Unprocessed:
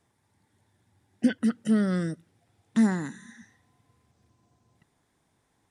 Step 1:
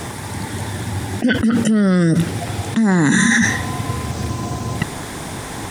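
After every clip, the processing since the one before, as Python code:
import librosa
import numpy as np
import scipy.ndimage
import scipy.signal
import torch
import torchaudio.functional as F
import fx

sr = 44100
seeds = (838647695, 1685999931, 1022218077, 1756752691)

y = fx.env_flatten(x, sr, amount_pct=100)
y = y * librosa.db_to_amplitude(3.5)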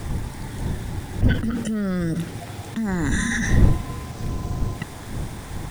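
y = fx.delta_hold(x, sr, step_db=-34.5)
y = fx.dmg_wind(y, sr, seeds[0], corner_hz=120.0, level_db=-15.0)
y = y * librosa.db_to_amplitude(-10.0)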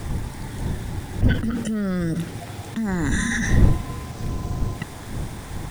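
y = x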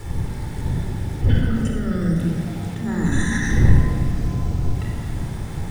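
y = fx.room_shoebox(x, sr, seeds[1], volume_m3=3800.0, walls='mixed', distance_m=4.2)
y = y * librosa.db_to_amplitude(-6.0)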